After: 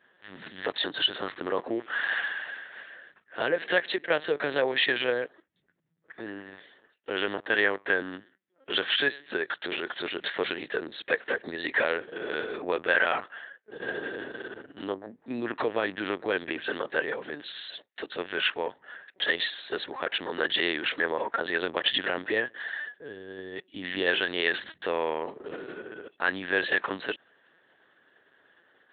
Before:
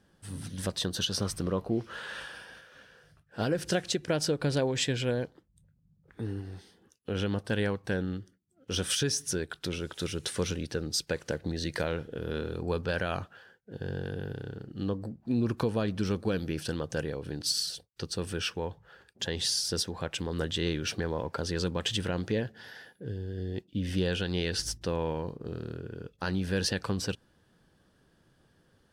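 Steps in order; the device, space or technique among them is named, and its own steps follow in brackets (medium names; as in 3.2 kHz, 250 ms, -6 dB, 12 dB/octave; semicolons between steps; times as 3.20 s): talking toy (LPC vocoder at 8 kHz pitch kept; high-pass 450 Hz 12 dB/octave; peaking EQ 1.8 kHz +10 dB 0.45 oct); trim +6 dB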